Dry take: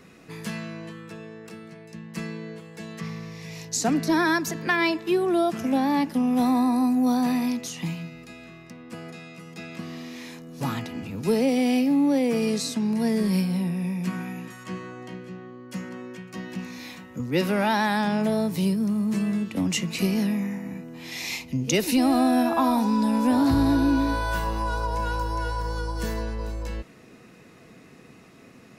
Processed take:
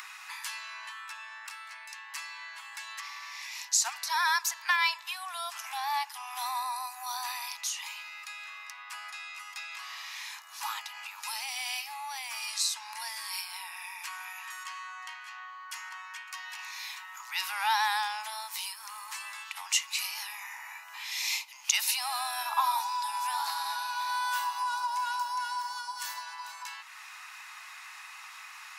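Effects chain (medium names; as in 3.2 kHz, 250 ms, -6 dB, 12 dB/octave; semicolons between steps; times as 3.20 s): steep high-pass 850 Hz 72 dB/octave; dynamic bell 1.6 kHz, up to -6 dB, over -45 dBFS, Q 0.83; upward compressor, threshold -40 dBFS; trim +3 dB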